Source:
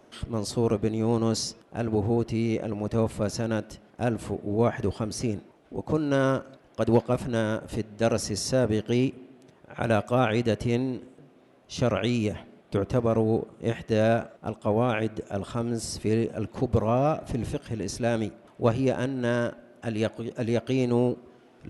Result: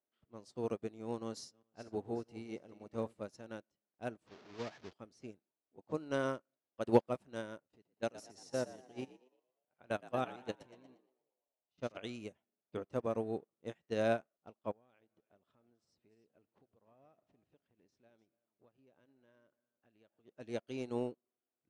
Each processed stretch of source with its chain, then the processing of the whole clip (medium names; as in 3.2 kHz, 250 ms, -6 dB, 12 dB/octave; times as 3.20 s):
1.23–3.21 s: backward echo that repeats 201 ms, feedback 54%, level -12 dB + band-stop 2.5 kHz, Q 26
4.27–4.93 s: one-bit delta coder 32 kbps, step -24 dBFS + valve stage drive 17 dB, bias 0.55
7.61–11.97 s: level held to a coarse grid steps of 11 dB + frequency-shifting echo 117 ms, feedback 61%, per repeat +62 Hz, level -7.5 dB
14.71–20.25 s: compression 8:1, threshold -32 dBFS + delay 299 ms -15 dB
whole clip: high-pass 270 Hz 6 dB/octave; level-controlled noise filter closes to 2.4 kHz, open at -25.5 dBFS; upward expansion 2.5:1, over -44 dBFS; trim -1.5 dB